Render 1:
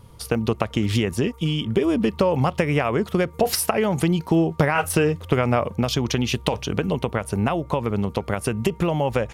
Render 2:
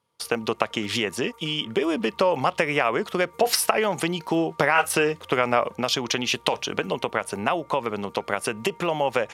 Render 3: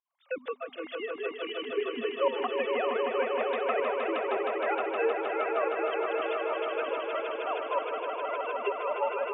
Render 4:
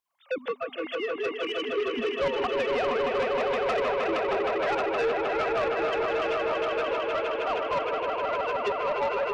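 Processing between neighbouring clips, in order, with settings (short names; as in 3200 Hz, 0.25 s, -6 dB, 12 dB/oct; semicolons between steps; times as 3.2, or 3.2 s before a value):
gate with hold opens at -36 dBFS; weighting filter A; gain +2 dB
sine-wave speech; pump 158 bpm, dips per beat 2, -20 dB, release 0.151 s; swelling echo 0.156 s, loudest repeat 5, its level -6 dB; gain -8.5 dB
soft clip -28.5 dBFS, distortion -11 dB; gain +6.5 dB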